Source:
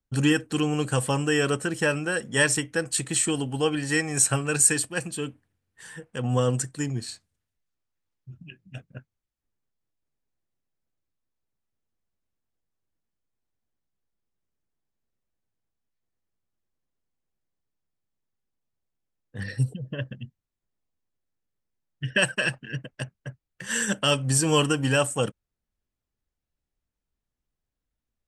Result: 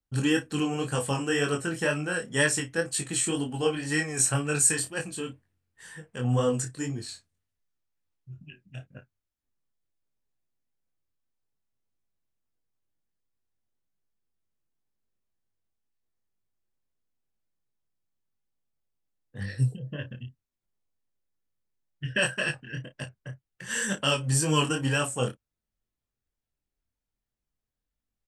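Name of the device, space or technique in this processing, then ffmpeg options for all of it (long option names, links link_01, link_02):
double-tracked vocal: -filter_complex "[0:a]asplit=2[link_01][link_02];[link_02]adelay=32,volume=-12dB[link_03];[link_01][link_03]amix=inputs=2:normalize=0,flanger=delay=20:depth=4.5:speed=2"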